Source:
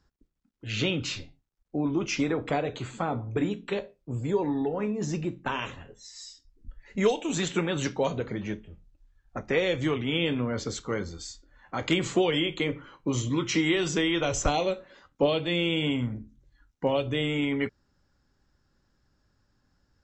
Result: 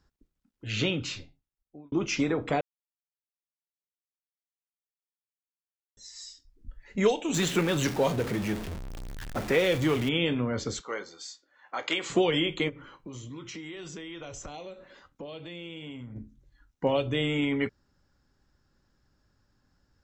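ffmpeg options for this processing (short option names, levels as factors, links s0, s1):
-filter_complex "[0:a]asettb=1/sr,asplit=3[s0][s1][s2];[s0]atrim=end=7.344[s3];[s1]atrim=start=7.34:end=10.09,asetpts=PTS-STARTPTS,afade=t=in:d=0.004:c=qsin,afade=t=out:st=2.746:d=0.004:c=qsin,aeval=exprs='val(0)+0.5*0.0251*sgn(val(0))':c=same[s4];[s2]atrim=start=10.086[s5];[s3][s4]acrossfade=d=0.004:c1=hsin:c2=qsin[s6];[s6][s5]acrossfade=d=0.004:c1=qsin:c2=hsin,asettb=1/sr,asplit=3[s7][s8][s9];[s7]atrim=end=10.814[s10];[s8]atrim=start=10.81:end=12.1,asetpts=PTS-STARTPTS,afade=t=in:d=0.004:c=qsin,afade=t=out:st=1.286:d=0.004:c=qsin,highpass=540,lowpass=7200[s11];[s9]atrim=start=12.096[s12];[s10][s11]acrossfade=d=0.004:c1=hsin:c2=qsin[s13];[s13][s12]acrossfade=d=0.004:c1=qsin:c2=hsin,asplit=3[s14][s15][s16];[s14]afade=t=out:st=12.68:d=0.02[s17];[s15]acompressor=threshold=0.00891:ratio=4:attack=3.2:release=140:knee=1:detection=peak,afade=t=in:st=12.68:d=0.02,afade=t=out:st=16.15:d=0.02[s18];[s16]afade=t=in:st=16.15:d=0.02[s19];[s17][s18][s19]amix=inputs=3:normalize=0,asplit=4[s20][s21][s22][s23];[s20]atrim=end=1.92,asetpts=PTS-STARTPTS,afade=t=out:st=0.8:d=1.12[s24];[s21]atrim=start=1.92:end=2.61,asetpts=PTS-STARTPTS,afade=t=in:d=0.004:c=hsin,afade=t=out:st=0.686:d=0.004:c=hsin[s25];[s22]atrim=start=2.61:end=5.97,asetpts=PTS-STARTPTS,volume=0[s26];[s23]atrim=start=5.97,asetpts=PTS-STARTPTS,afade=t=in:d=0.004:c=hsin[s27];[s24][s25][s26][s27]concat=n=4:v=0:a=1"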